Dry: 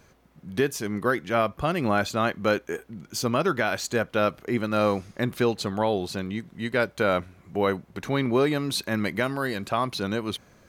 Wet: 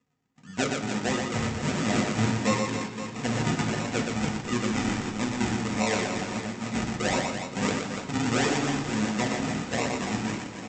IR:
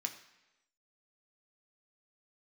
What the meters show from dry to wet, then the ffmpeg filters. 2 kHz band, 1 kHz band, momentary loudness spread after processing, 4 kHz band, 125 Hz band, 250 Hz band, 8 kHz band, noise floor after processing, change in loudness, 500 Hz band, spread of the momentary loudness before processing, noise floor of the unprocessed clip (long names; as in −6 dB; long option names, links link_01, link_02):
−1.5 dB, −3.0 dB, 6 LU, +0.5 dB, +1.5 dB, +1.0 dB, +4.5 dB, −42 dBFS, −1.5 dB, −6.5 dB, 7 LU, −58 dBFS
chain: -filter_complex "[0:a]agate=range=-14dB:threshold=-52dB:ratio=16:detection=peak,aresample=16000,acrusher=samples=20:mix=1:aa=0.000001:lfo=1:lforange=20:lforate=1.5,aresample=44100,aecho=1:1:120|288|523.2|852.5|1313:0.631|0.398|0.251|0.158|0.1[link_01];[1:a]atrim=start_sample=2205[link_02];[link_01][link_02]afir=irnorm=-1:irlink=0,volume=-1dB"